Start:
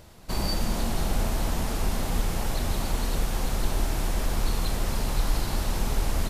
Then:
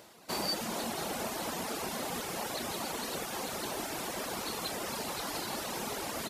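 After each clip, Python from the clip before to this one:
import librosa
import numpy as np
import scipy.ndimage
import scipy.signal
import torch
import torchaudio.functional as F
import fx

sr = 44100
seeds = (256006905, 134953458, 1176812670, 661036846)

y = scipy.signal.sosfilt(scipy.signal.butter(2, 280.0, 'highpass', fs=sr, output='sos'), x)
y = fx.dereverb_blind(y, sr, rt60_s=0.85)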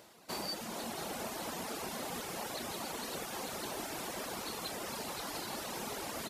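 y = fx.rider(x, sr, range_db=10, speed_s=0.5)
y = F.gain(torch.from_numpy(y), -4.0).numpy()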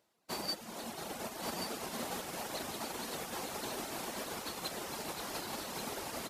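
y = x + 10.0 ** (-5.5 / 20.0) * np.pad(x, (int(1132 * sr / 1000.0), 0))[:len(x)]
y = fx.upward_expand(y, sr, threshold_db=-51.0, expansion=2.5)
y = F.gain(torch.from_numpy(y), 3.5).numpy()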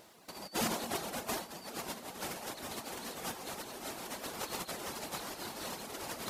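y = fx.over_compress(x, sr, threshold_db=-48.0, ratio=-0.5)
y = fx.vibrato(y, sr, rate_hz=9.5, depth_cents=38.0)
y = F.gain(torch.from_numpy(y), 9.0).numpy()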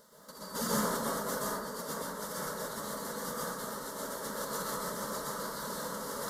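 y = fx.fixed_phaser(x, sr, hz=500.0, stages=8)
y = fx.rev_plate(y, sr, seeds[0], rt60_s=1.1, hf_ratio=0.35, predelay_ms=110, drr_db=-6.5)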